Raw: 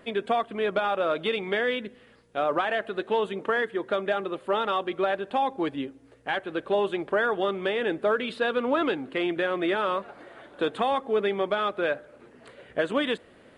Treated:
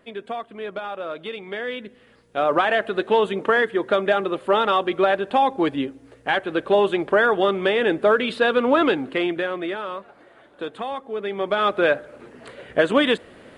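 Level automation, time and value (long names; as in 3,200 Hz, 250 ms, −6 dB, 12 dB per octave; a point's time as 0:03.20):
0:01.44 −5 dB
0:02.62 +7 dB
0:09.04 +7 dB
0:09.84 −4 dB
0:11.18 −4 dB
0:11.69 +8 dB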